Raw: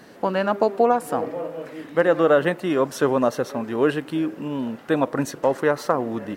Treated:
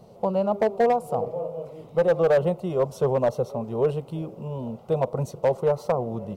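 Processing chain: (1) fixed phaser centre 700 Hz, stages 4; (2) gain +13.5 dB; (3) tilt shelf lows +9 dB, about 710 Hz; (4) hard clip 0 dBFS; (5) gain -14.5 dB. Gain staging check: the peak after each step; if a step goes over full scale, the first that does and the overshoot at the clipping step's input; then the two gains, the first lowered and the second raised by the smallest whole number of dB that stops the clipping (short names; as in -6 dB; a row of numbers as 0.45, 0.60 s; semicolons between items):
-8.0, +5.5, +6.0, 0.0, -14.5 dBFS; step 2, 6.0 dB; step 2 +7.5 dB, step 5 -8.5 dB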